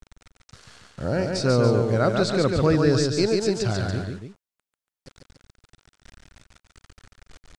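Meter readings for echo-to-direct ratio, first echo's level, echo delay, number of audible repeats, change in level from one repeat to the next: -3.0 dB, -4.0 dB, 142 ms, 2, -5.0 dB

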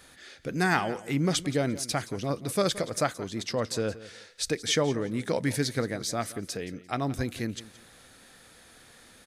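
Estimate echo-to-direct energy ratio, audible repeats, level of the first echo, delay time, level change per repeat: -17.0 dB, 2, -17.0 dB, 173 ms, -12.5 dB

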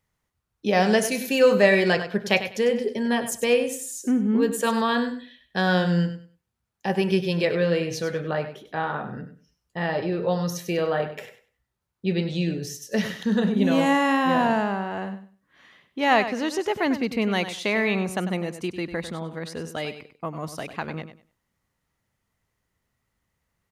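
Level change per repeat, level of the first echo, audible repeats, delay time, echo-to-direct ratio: -13.5 dB, -11.0 dB, 2, 98 ms, -11.0 dB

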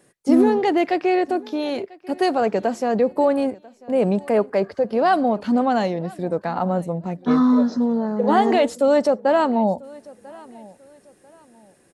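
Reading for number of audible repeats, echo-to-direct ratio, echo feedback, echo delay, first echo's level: 2, -22.5 dB, 32%, 993 ms, -23.0 dB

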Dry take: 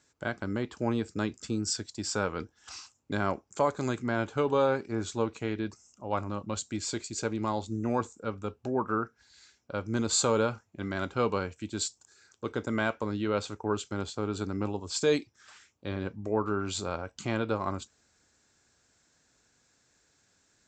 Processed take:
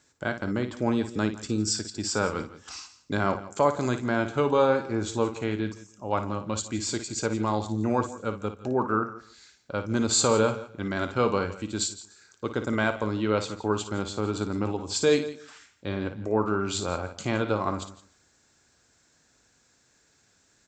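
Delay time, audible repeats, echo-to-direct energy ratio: 56 ms, 4, -9.0 dB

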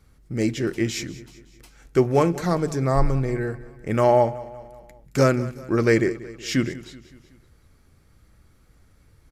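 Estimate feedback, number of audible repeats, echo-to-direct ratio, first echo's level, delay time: 53%, 4, -16.5 dB, -18.0 dB, 188 ms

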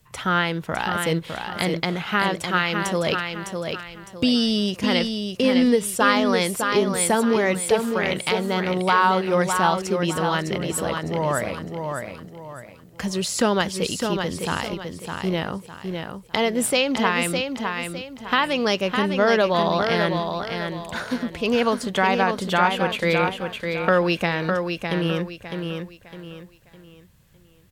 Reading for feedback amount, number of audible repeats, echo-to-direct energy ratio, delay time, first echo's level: 34%, 4, -5.0 dB, 607 ms, -5.5 dB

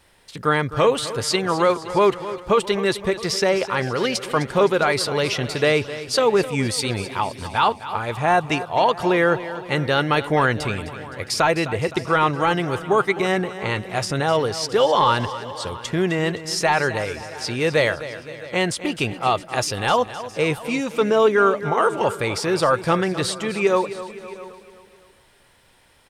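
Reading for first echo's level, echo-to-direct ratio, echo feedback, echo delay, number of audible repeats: -14.0 dB, -12.0 dB, no regular repeats, 258 ms, 6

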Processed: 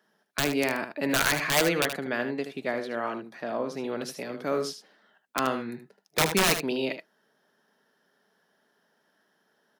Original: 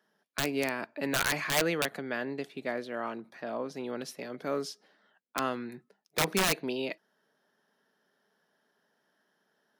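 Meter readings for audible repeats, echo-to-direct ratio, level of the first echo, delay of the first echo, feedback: 1, -9.0 dB, -9.0 dB, 76 ms, no regular repeats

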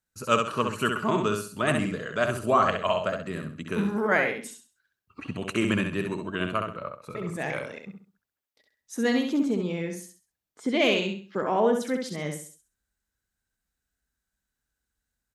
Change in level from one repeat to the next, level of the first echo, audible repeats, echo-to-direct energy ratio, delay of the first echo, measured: -10.0 dB, -5.0 dB, 3, -4.5 dB, 66 ms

